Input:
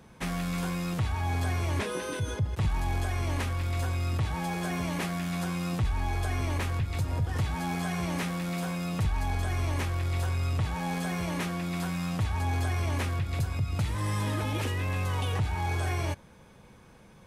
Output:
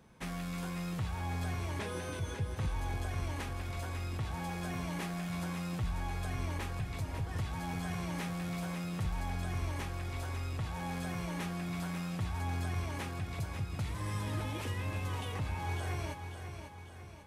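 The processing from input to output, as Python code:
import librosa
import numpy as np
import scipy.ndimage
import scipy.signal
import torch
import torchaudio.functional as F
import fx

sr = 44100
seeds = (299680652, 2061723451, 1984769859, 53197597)

y = fx.echo_feedback(x, sr, ms=545, feedback_pct=50, wet_db=-8.0)
y = y * 10.0 ** (-7.5 / 20.0)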